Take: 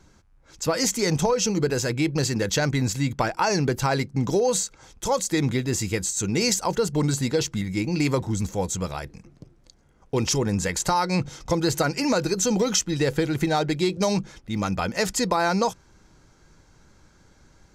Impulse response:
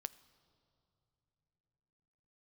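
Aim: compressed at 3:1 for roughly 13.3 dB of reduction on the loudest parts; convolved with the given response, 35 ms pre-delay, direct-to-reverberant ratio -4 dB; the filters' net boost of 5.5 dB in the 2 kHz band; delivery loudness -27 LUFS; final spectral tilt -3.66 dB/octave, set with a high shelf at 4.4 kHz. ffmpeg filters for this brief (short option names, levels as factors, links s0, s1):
-filter_complex "[0:a]equalizer=f=2000:t=o:g=6,highshelf=f=4400:g=5,acompressor=threshold=0.02:ratio=3,asplit=2[s0][s1];[1:a]atrim=start_sample=2205,adelay=35[s2];[s1][s2]afir=irnorm=-1:irlink=0,volume=2.37[s3];[s0][s3]amix=inputs=2:normalize=0,volume=1.12"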